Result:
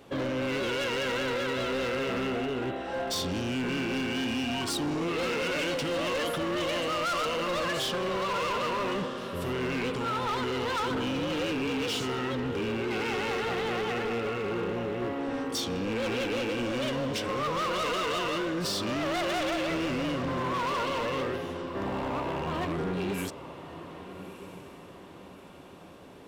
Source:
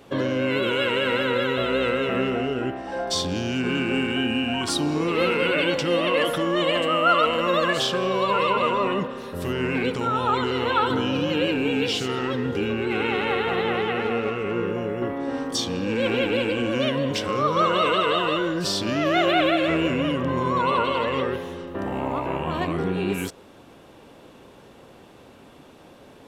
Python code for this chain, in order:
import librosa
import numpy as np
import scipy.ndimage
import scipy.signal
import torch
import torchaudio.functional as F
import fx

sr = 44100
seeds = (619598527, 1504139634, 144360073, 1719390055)

y = fx.echo_diffused(x, sr, ms=1261, feedback_pct=45, wet_db=-15.5)
y = np.clip(y, -10.0 ** (-24.0 / 20.0), 10.0 ** (-24.0 / 20.0))
y = F.gain(torch.from_numpy(y), -3.5).numpy()